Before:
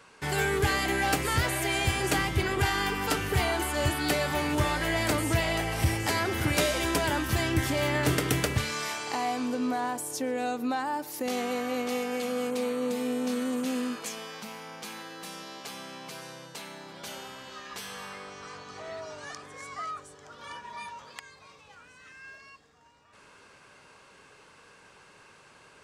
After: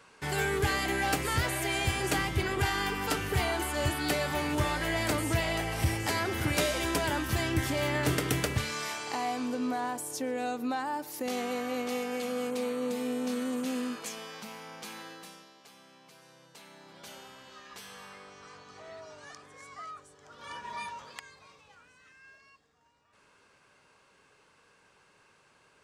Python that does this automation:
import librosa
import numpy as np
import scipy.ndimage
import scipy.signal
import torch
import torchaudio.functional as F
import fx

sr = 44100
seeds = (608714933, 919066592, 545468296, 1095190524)

y = fx.gain(x, sr, db=fx.line((15.1, -2.5), (15.54, -14.5), (16.19, -14.5), (16.96, -7.0), (20.15, -7.0), (20.71, 2.5), (22.19, -8.5)))